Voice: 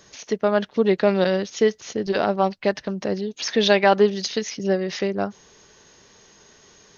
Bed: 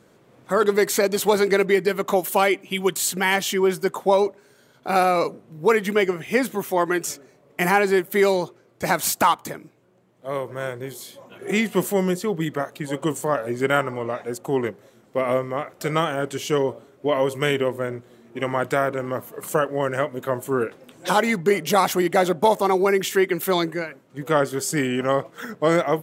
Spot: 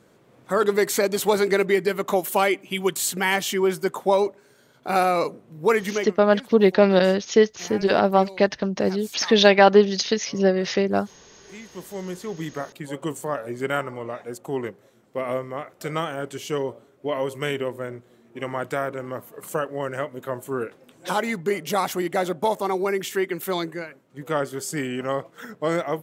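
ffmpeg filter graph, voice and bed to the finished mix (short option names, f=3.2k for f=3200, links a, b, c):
-filter_complex "[0:a]adelay=5750,volume=2.5dB[a];[1:a]volume=14dB,afade=t=out:st=5.82:d=0.35:silence=0.112202,afade=t=in:st=11.69:d=0.87:silence=0.16788[b];[a][b]amix=inputs=2:normalize=0"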